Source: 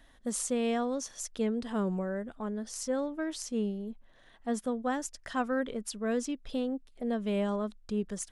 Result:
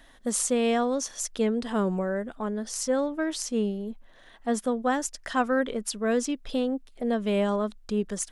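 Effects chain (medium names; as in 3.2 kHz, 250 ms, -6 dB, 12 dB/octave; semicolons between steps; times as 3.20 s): peaking EQ 70 Hz -6.5 dB 2.9 oct; trim +7 dB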